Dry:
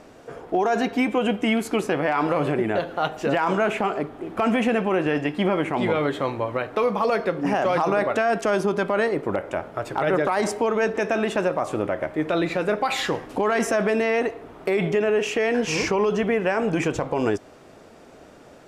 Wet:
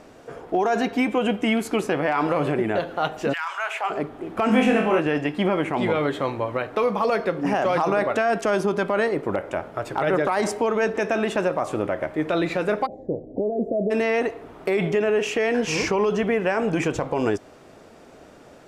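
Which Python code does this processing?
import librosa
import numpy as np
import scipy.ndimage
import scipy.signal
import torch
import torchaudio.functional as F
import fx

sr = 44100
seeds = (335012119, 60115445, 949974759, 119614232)

y = fx.highpass(x, sr, hz=fx.line((3.32, 1500.0), (3.89, 590.0)), slope=24, at=(3.32, 3.89), fade=0.02)
y = fx.room_flutter(y, sr, wall_m=4.0, rt60_s=0.45, at=(4.46, 5.0))
y = fx.ellip_lowpass(y, sr, hz=630.0, order=4, stop_db=50, at=(12.85, 13.9), fade=0.02)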